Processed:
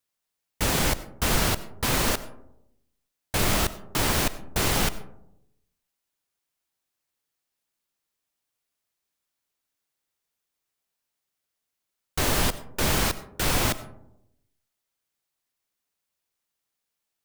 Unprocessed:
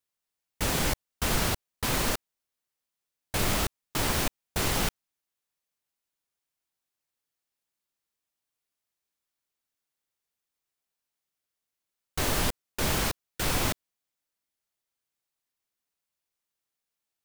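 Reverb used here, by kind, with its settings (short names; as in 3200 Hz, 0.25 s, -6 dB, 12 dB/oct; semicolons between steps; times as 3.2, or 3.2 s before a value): digital reverb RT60 0.82 s, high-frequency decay 0.3×, pre-delay 50 ms, DRR 15.5 dB; gain +3.5 dB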